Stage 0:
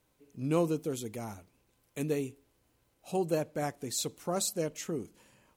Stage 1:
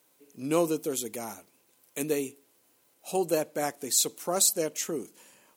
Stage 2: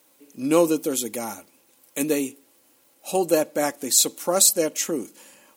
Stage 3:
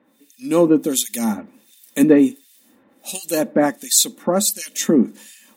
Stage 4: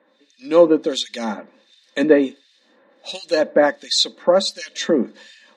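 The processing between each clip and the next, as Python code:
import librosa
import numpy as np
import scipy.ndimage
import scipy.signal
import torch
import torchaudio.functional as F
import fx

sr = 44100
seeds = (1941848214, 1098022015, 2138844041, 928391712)

y1 = scipy.signal.sosfilt(scipy.signal.butter(2, 260.0, 'highpass', fs=sr, output='sos'), x)
y1 = fx.high_shelf(y1, sr, hz=6000.0, db=10.0)
y1 = y1 * librosa.db_to_amplitude(4.0)
y2 = y1 + 0.38 * np.pad(y1, (int(3.6 * sr / 1000.0), 0))[:len(y1)]
y2 = y2 * librosa.db_to_amplitude(6.0)
y3 = fx.rider(y2, sr, range_db=3, speed_s=0.5)
y3 = fx.small_body(y3, sr, hz=(220.0, 1800.0, 3600.0), ring_ms=65, db=16)
y3 = fx.harmonic_tremolo(y3, sr, hz=1.4, depth_pct=100, crossover_hz=2100.0)
y3 = y3 * librosa.db_to_amplitude(5.5)
y4 = fx.cabinet(y3, sr, low_hz=240.0, low_slope=12, high_hz=5400.0, hz=(260.0, 540.0, 1000.0, 1700.0, 4000.0), db=(-5, 8, 4, 7, 8))
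y4 = y4 * librosa.db_to_amplitude(-1.0)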